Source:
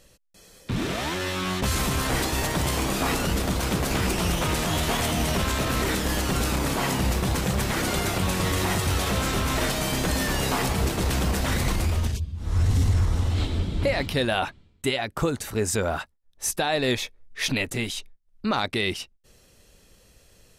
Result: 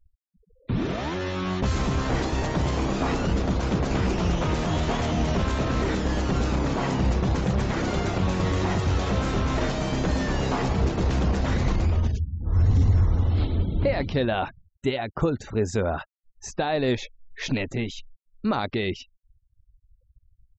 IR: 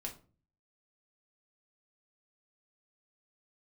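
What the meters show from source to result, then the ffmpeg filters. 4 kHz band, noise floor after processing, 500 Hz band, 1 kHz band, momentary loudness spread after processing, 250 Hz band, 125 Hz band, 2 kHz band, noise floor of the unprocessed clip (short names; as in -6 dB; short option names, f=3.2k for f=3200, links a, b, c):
-7.0 dB, -67 dBFS, +1.0 dB, -1.0 dB, 6 LU, +1.5 dB, +2.0 dB, -4.5 dB, -58 dBFS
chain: -af "aresample=16000,aresample=44100,afftfilt=real='re*gte(hypot(re,im),0.0112)':imag='im*gte(hypot(re,im),0.0112)':win_size=1024:overlap=0.75,tiltshelf=f=1.4k:g=5,volume=-3dB"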